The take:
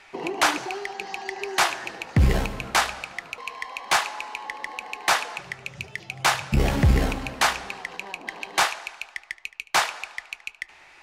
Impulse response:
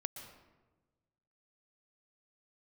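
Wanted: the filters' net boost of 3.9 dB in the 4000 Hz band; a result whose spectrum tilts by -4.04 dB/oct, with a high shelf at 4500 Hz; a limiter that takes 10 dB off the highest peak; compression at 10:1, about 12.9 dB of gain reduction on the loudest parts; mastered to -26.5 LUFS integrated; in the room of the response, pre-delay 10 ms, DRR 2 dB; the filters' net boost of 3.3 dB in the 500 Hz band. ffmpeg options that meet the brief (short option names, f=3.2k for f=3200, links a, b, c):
-filter_complex "[0:a]equalizer=f=500:t=o:g=4.5,equalizer=f=4k:t=o:g=8.5,highshelf=f=4.5k:g=-7,acompressor=threshold=-27dB:ratio=10,alimiter=limit=-21.5dB:level=0:latency=1,asplit=2[a][b];[1:a]atrim=start_sample=2205,adelay=10[c];[b][c]afir=irnorm=-1:irlink=0,volume=-0.5dB[d];[a][d]amix=inputs=2:normalize=0,volume=7dB"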